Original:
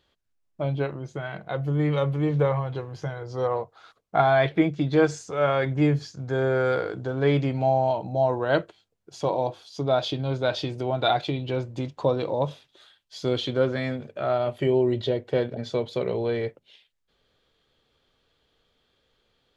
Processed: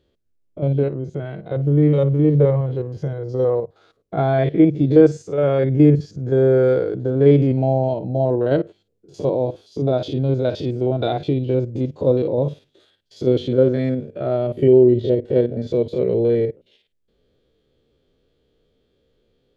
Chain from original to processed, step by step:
spectrum averaged block by block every 50 ms
low shelf with overshoot 640 Hz +11 dB, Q 1.5
level −3 dB

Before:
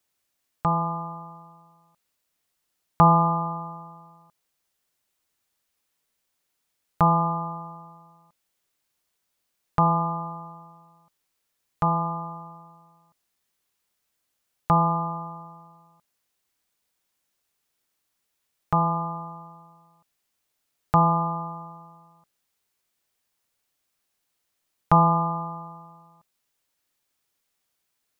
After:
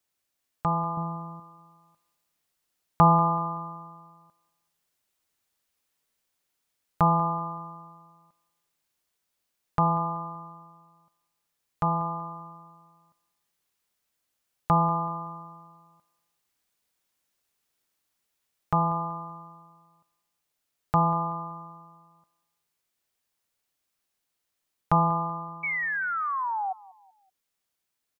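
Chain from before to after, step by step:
0:00.97–0:01.40: low-shelf EQ 430 Hz +9 dB
0:25.63–0:26.73: sound drawn into the spectrogram fall 740–2,300 Hz −23 dBFS
repeating echo 190 ms, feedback 39%, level −21 dB
speech leveller 2 s
level −5.5 dB

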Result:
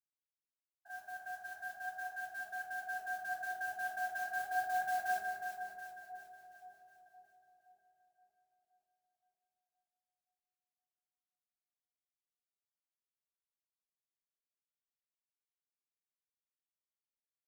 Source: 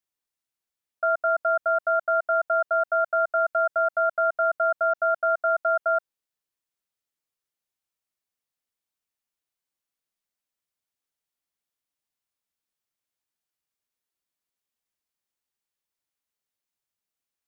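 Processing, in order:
spectrum averaged block by block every 50 ms
source passing by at 0:06.43, 47 m/s, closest 7 metres
frequency shifter −28 Hz
noise that follows the level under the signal 16 dB
flanger 0.37 Hz, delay 3.2 ms, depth 8.1 ms, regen +56%
echo with a time of its own for lows and highs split 850 Hz, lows 521 ms, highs 364 ms, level −7.5 dB
on a send at −2.5 dB: convolution reverb RT60 1.6 s, pre-delay 3 ms
on the sum: level +12.5 dB

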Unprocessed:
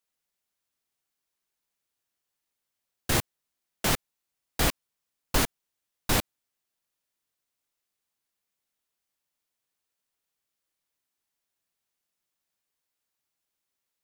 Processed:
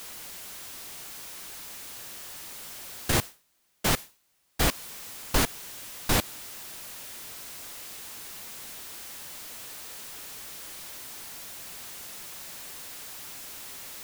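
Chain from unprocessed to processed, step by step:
converter with a step at zero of −35 dBFS
0:03.12–0:04.66: downward expander −27 dBFS

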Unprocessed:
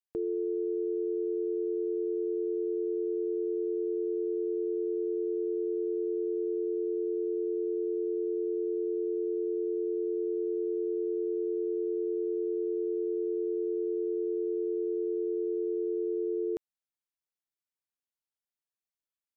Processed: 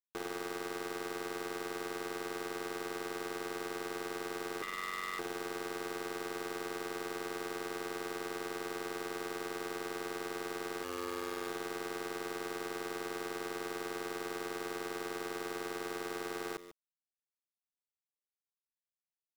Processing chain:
0:10.83–0:11.48: parametric band 65 Hz −14.5 dB → −6 dB 2.5 octaves
bit reduction 5 bits
0:04.62–0:05.19: ring modulation 1,600 Hz
single-tap delay 144 ms −16.5 dB
saturating transformer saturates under 520 Hz
level −6.5 dB

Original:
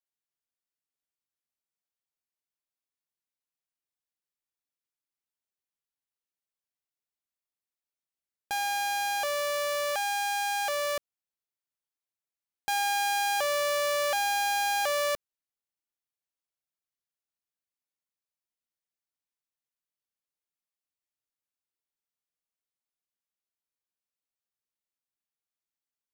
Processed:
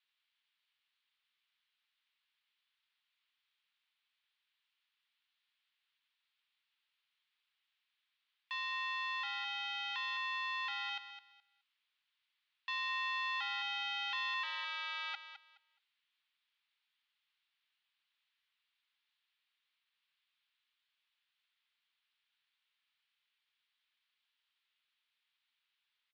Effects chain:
0:14.43–0:15.14: samples sorted by size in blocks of 128 samples
in parallel at +2 dB: brickwall limiter −32.5 dBFS, peak gain reduction 10 dB
on the sum: background noise white −69 dBFS
first difference
on a send: repeating echo 211 ms, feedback 21%, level −11 dB
on the sum: single-sideband voice off tune +230 Hz 580–3,400 Hz
level +2 dB

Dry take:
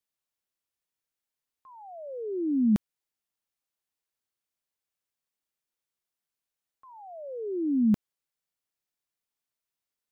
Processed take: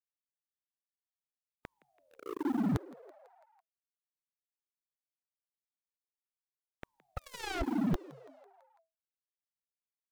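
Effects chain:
0:07.17–0:07.62: gain on one half-wave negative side −7 dB
gate on every frequency bin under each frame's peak −20 dB weak
low-shelf EQ 360 Hz +11.5 dB
leveller curve on the samples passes 5
brickwall limiter −32 dBFS, peak gain reduction 11.5 dB
on a send: echo with shifted repeats 166 ms, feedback 58%, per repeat +130 Hz, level −21 dB
on the sum: level +7.5 dB

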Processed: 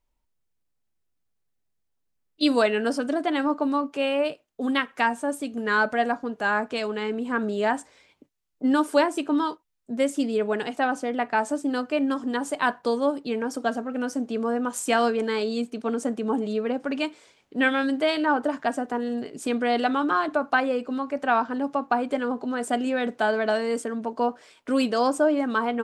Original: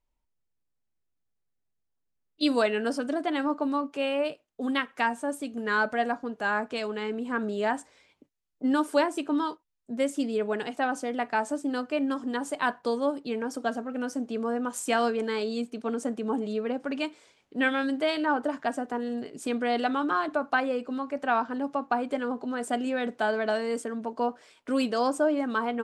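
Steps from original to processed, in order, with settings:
0:10.94–0:11.38: bass and treble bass 0 dB, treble −5 dB
level +3.5 dB

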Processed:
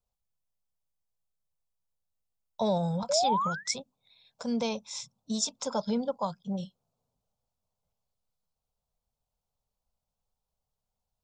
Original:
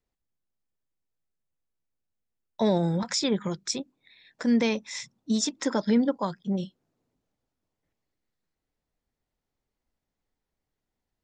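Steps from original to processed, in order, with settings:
sound drawn into the spectrogram rise, 0:03.09–0:03.74, 540–2,300 Hz −26 dBFS
phaser with its sweep stopped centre 770 Hz, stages 4

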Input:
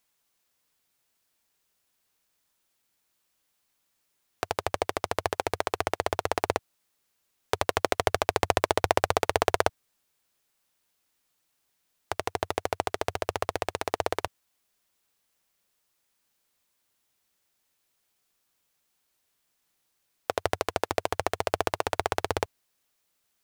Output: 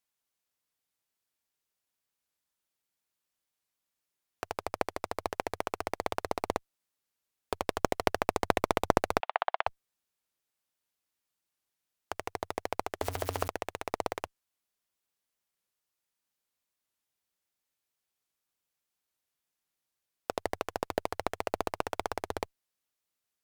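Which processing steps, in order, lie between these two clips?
0:13.01–0:13.48: converter with a step at zero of −24 dBFS
harmonic generator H 7 −19 dB, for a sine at −1 dBFS
asymmetric clip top −20 dBFS
0:09.20–0:09.67: Chebyshev band-pass filter 700–3,400 Hz, order 3
wow of a warped record 45 rpm, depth 100 cents
level +2.5 dB

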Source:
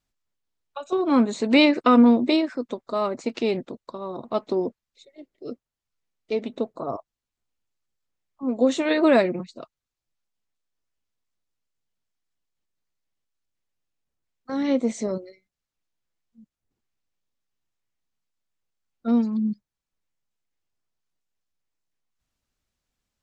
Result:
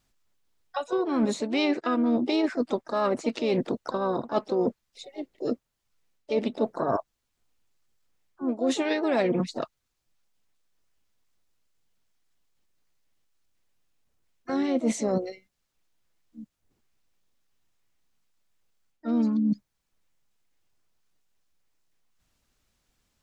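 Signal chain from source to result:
reversed playback
downward compressor 16 to 1, threshold −30 dBFS, peak gain reduction 20 dB
reversed playback
pitch-shifted copies added +5 semitones −11 dB
level +8 dB

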